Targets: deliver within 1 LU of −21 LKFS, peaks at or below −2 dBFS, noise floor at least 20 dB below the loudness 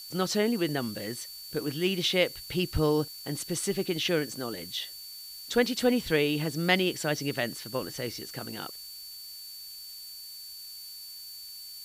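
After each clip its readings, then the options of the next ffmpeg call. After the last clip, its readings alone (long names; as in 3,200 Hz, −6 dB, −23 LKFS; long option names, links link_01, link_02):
interfering tone 4,500 Hz; level of the tone −43 dBFS; background noise floor −44 dBFS; target noise floor −50 dBFS; integrated loudness −30.0 LKFS; sample peak −9.5 dBFS; target loudness −21.0 LKFS
→ -af "bandreject=frequency=4500:width=30"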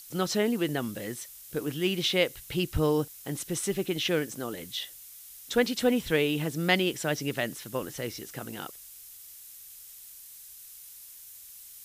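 interfering tone none found; background noise floor −48 dBFS; target noise floor −50 dBFS
→ -af "afftdn=noise_reduction=6:noise_floor=-48"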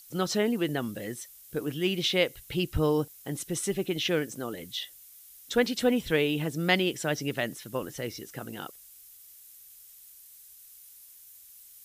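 background noise floor −52 dBFS; integrated loudness −29.5 LKFS; sample peak −9.5 dBFS; target loudness −21.0 LKFS
→ -af "volume=8.5dB,alimiter=limit=-2dB:level=0:latency=1"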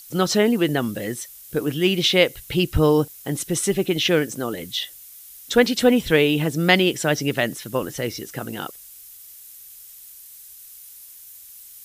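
integrated loudness −21.0 LKFS; sample peak −2.0 dBFS; background noise floor −44 dBFS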